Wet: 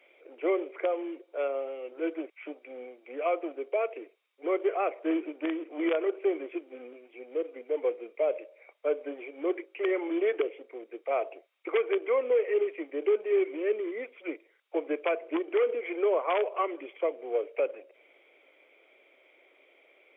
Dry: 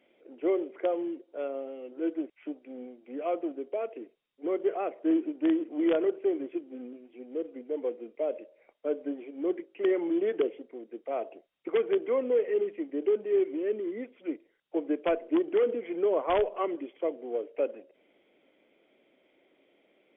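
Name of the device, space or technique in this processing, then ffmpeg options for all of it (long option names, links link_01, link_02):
laptop speaker: -af "highpass=frequency=390:width=0.5412,highpass=frequency=390:width=1.3066,equalizer=frequency=1200:width_type=o:width=0.45:gain=4.5,equalizer=frequency=2300:width_type=o:width=0.25:gain=10,alimiter=limit=-22dB:level=0:latency=1:release=309,volume=4dB"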